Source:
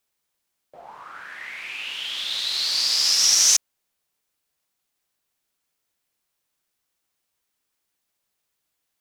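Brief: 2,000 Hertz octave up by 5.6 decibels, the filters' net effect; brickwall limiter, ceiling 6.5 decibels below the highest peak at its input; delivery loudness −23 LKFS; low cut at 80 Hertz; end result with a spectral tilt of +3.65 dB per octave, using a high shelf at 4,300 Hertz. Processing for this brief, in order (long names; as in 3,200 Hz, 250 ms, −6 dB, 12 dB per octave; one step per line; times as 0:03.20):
high-pass filter 80 Hz
parametric band 2,000 Hz +9 dB
high-shelf EQ 4,300 Hz −8 dB
level +1.5 dB
brickwall limiter −13.5 dBFS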